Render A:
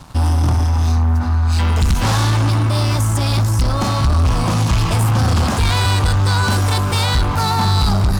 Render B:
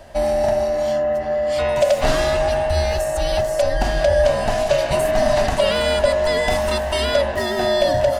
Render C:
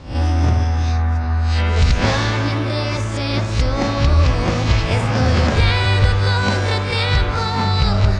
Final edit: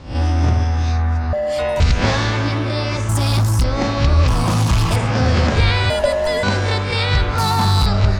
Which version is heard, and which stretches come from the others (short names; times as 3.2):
C
1.33–1.8 from B
3.09–3.64 from A
4.28–4.96 from A
5.9–6.43 from B
7.38–7.86 from A